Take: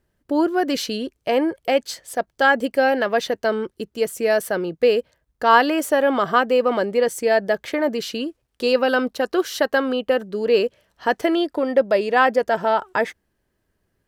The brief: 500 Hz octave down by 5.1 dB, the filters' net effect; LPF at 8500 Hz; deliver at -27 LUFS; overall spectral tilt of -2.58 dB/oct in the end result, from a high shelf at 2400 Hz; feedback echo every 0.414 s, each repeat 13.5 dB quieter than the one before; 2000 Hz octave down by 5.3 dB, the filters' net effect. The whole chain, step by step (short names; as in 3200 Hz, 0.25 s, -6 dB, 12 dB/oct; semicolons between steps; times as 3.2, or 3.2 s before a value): LPF 8500 Hz; bell 500 Hz -5.5 dB; bell 2000 Hz -4 dB; high shelf 2400 Hz -6 dB; feedback echo 0.414 s, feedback 21%, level -13.5 dB; gain -2.5 dB